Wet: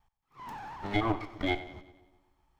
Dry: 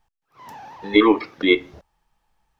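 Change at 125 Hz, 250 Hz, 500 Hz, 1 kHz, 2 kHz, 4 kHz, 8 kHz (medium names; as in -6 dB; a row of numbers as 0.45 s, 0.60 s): +4.0 dB, -15.0 dB, -16.5 dB, -8.0 dB, -13.0 dB, -14.5 dB, no reading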